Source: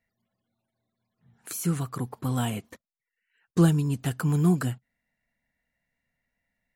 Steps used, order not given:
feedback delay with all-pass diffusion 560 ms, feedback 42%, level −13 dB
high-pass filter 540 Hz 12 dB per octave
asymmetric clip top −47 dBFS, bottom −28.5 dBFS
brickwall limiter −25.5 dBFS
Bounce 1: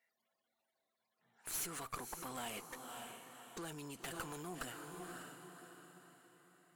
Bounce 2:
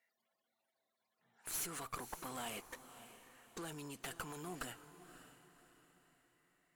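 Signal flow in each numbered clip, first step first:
feedback delay with all-pass diffusion, then brickwall limiter, then high-pass filter, then asymmetric clip
brickwall limiter, then high-pass filter, then asymmetric clip, then feedback delay with all-pass diffusion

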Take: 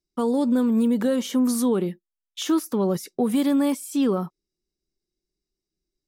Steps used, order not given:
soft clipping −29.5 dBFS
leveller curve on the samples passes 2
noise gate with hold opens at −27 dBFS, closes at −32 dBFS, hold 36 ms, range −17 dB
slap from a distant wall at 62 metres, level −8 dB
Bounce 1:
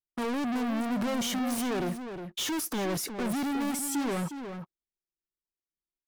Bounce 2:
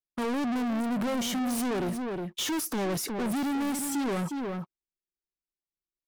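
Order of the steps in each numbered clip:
leveller curve on the samples, then noise gate with hold, then soft clipping, then slap from a distant wall
noise gate with hold, then soft clipping, then slap from a distant wall, then leveller curve on the samples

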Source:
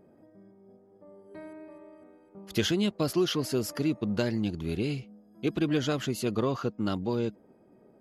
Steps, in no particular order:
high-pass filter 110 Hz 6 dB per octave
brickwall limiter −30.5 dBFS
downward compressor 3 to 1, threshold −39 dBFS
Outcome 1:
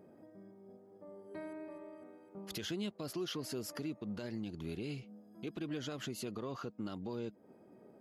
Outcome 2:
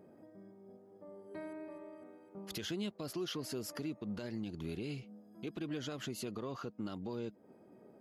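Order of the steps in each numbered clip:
downward compressor, then high-pass filter, then brickwall limiter
high-pass filter, then downward compressor, then brickwall limiter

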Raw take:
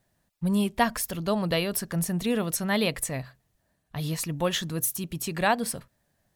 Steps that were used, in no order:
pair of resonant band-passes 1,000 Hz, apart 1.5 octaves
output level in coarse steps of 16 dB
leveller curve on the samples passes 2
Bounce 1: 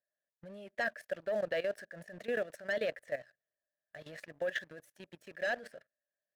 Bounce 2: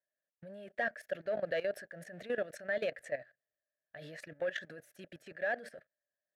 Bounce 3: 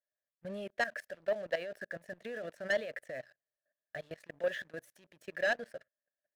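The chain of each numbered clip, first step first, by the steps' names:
pair of resonant band-passes, then leveller curve on the samples, then output level in coarse steps
leveller curve on the samples, then pair of resonant band-passes, then output level in coarse steps
pair of resonant band-passes, then output level in coarse steps, then leveller curve on the samples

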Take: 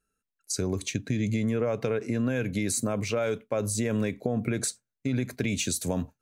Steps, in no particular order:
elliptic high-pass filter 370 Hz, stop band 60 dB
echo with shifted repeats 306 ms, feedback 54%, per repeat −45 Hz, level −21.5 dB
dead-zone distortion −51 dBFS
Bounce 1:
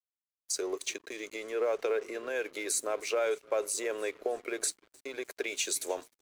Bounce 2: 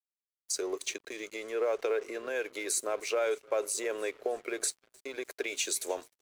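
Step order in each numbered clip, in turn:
elliptic high-pass filter, then echo with shifted repeats, then dead-zone distortion
echo with shifted repeats, then elliptic high-pass filter, then dead-zone distortion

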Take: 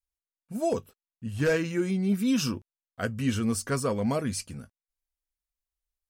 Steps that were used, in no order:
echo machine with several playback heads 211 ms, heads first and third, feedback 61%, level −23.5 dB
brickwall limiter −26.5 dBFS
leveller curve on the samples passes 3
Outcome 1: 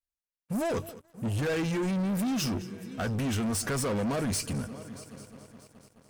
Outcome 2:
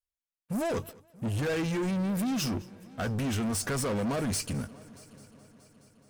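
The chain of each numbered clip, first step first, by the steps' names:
brickwall limiter, then echo machine with several playback heads, then leveller curve on the samples
brickwall limiter, then leveller curve on the samples, then echo machine with several playback heads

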